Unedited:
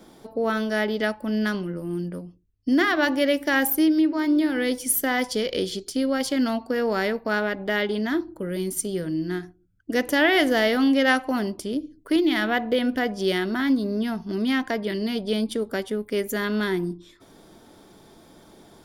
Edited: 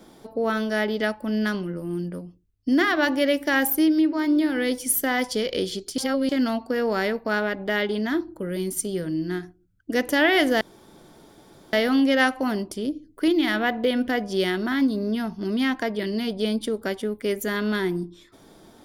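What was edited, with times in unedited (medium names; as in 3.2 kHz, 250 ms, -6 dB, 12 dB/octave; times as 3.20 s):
5.98–6.29 s: reverse
10.61 s: insert room tone 1.12 s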